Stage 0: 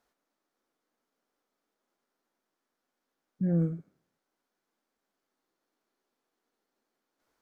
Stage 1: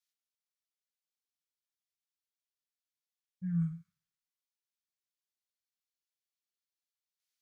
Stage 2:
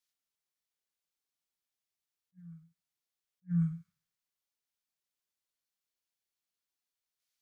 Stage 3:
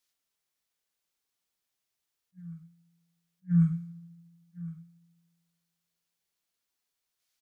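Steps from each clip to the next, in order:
Chebyshev band-stop filter 180–1,100 Hz, order 4; multiband upward and downward expander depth 70%; level −6.5 dB
backwards echo 1,094 ms −21 dB; level that may rise only so fast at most 500 dB per second; level +2 dB
single-tap delay 1,062 ms −17 dB; convolution reverb RT60 1.4 s, pre-delay 3 ms, DRR 19.5 dB; level +6 dB

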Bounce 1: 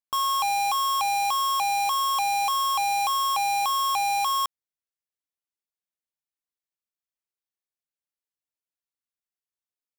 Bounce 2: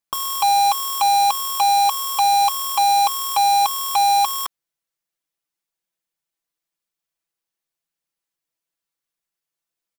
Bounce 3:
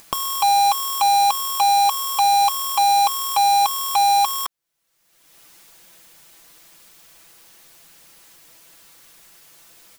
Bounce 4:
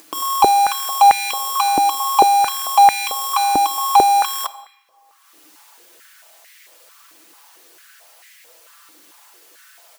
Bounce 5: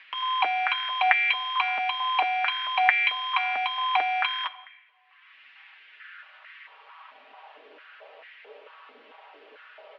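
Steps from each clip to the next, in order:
comb filter 6 ms, depth 76%; level +6 dB
upward compression, threshold −21 dBFS
on a send at −11.5 dB: convolution reverb RT60 1.6 s, pre-delay 7 ms; on the sum: boost into a limiter +11 dB; high-pass on a step sequencer 4.5 Hz 300–2,000 Hz; level −11 dB
single-sideband voice off tune −61 Hz 160–3,200 Hz; high-pass filter sweep 1,900 Hz → 480 Hz, 0:05.90–0:07.71; notch comb filter 180 Hz; level +3 dB

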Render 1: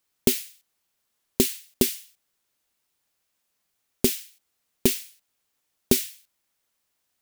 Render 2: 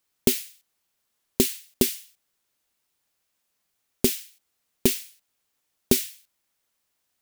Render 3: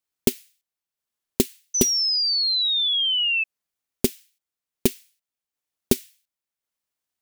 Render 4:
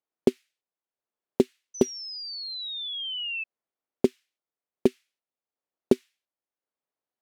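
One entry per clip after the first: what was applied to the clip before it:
no processing that can be heard
transient designer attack +11 dB, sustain −4 dB; sound drawn into the spectrogram fall, 0:01.74–0:03.44, 2,600–6,100 Hz −12 dBFS; level −10 dB
resonant band-pass 500 Hz, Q 0.79; level +3 dB

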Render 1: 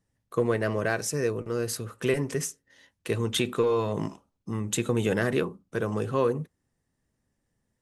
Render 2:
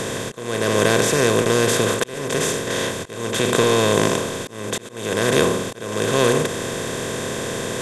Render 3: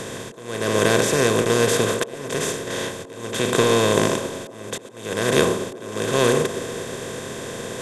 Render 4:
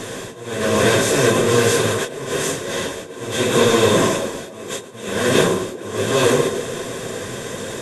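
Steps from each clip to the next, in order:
compressor on every frequency bin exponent 0.2; volume swells 495 ms; level +2 dB
delay with a band-pass on its return 120 ms, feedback 71%, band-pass 470 Hz, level −11 dB; expander for the loud parts 1.5 to 1, over −28 dBFS
random phases in long frames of 100 ms; level +3 dB

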